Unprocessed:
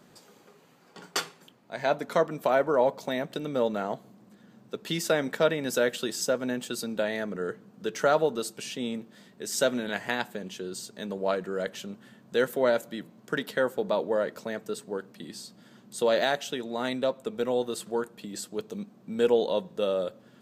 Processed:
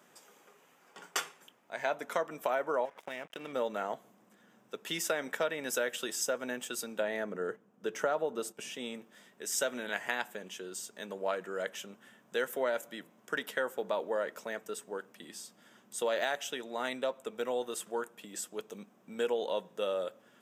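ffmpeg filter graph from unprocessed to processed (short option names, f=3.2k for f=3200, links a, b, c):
-filter_complex "[0:a]asettb=1/sr,asplit=3[a][b][c];[a]atrim=end=2.854[d];[b]atrim=start=2.85:end=3.53,asetpts=PTS-STARTPTS,afade=t=in:d=0.004:c=qsin,afade=t=out:st=0.676:d=0.004:c=qsin,highshelf=f=3.8k:t=q:w=3:g=-8,acompressor=threshold=-29dB:ratio=12:attack=3.2:release=140:knee=1:detection=peak,aeval=exprs='sgn(val(0))*max(abs(val(0))-0.00501,0)':c=same[e];[c]atrim=start=3.526[f];[d][e]acrossfade=d=0.004:c1=hsin:c2=qsin[g];[g][f]acrossfade=d=0.004:c1=qsin:c2=hsin,asettb=1/sr,asplit=3[h][i][j];[h]atrim=end=7.004[k];[i]atrim=start=7:end=8.74,asetpts=PTS-STARTPTS,afade=t=in:d=0.004:c=qsin,afade=t=out:st=1.736:d=0.004:c=qsin,agate=range=-7dB:threshold=-45dB:ratio=16:release=100:detection=peak,tiltshelf=f=1.1k:g=4.5[l];[j]atrim=start=8.736[m];[k][l]acrossfade=d=0.004:c1=hsin:c2=qsin[n];[n][m]acrossfade=d=0.004:c1=qsin:c2=hsin,highpass=f=800:p=1,equalizer=f=4.3k:w=4.5:g=-13.5,acompressor=threshold=-27dB:ratio=6"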